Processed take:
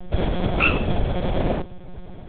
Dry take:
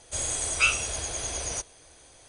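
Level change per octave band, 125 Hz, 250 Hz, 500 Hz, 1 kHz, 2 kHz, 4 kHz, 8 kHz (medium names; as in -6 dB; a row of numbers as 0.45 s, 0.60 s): +16.5 dB, +22.0 dB, +14.0 dB, +9.0 dB, +2.5 dB, -1.0 dB, under -40 dB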